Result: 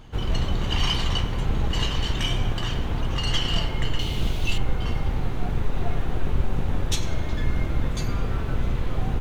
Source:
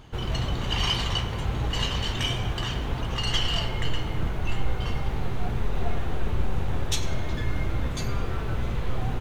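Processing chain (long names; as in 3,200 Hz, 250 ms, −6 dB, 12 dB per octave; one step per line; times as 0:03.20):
sub-octave generator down 2 octaves, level +4 dB
0:03.99–0:04.58: high shelf with overshoot 2,400 Hz +10 dB, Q 1.5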